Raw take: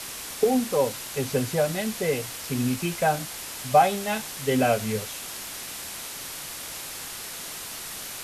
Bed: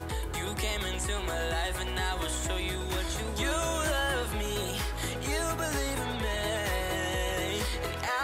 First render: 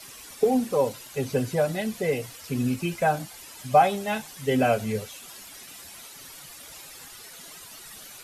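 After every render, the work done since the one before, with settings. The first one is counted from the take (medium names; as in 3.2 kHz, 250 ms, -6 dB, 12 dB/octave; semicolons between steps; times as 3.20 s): noise reduction 12 dB, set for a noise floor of -37 dBFS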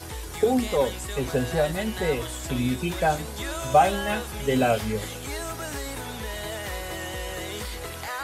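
add bed -2.5 dB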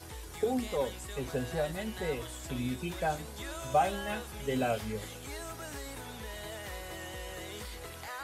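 trim -9 dB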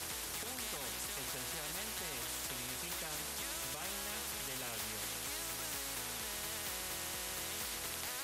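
peak limiter -27 dBFS, peak gain reduction 10.5 dB; spectrum-flattening compressor 4:1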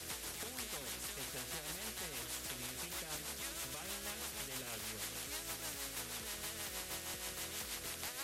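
rotary cabinet horn 6.3 Hz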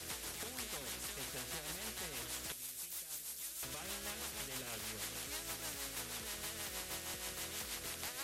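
2.52–3.63 s: pre-emphasis filter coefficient 0.8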